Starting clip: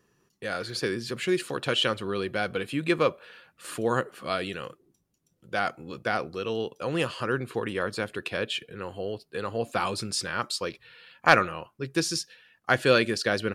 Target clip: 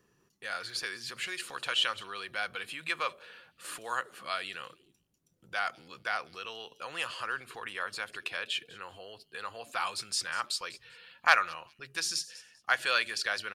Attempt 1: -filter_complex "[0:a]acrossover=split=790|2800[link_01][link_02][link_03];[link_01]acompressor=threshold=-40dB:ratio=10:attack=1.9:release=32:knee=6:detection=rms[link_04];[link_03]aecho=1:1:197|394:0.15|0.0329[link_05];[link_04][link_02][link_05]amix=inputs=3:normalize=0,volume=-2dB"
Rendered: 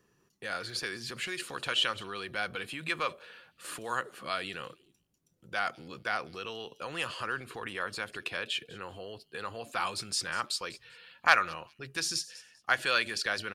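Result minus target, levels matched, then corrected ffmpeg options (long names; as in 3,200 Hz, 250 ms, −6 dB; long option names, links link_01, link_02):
downward compressor: peak gain reduction −10.5 dB
-filter_complex "[0:a]acrossover=split=790|2800[link_01][link_02][link_03];[link_01]acompressor=threshold=-51.5dB:ratio=10:attack=1.9:release=32:knee=6:detection=rms[link_04];[link_03]aecho=1:1:197|394:0.15|0.0329[link_05];[link_04][link_02][link_05]amix=inputs=3:normalize=0,volume=-2dB"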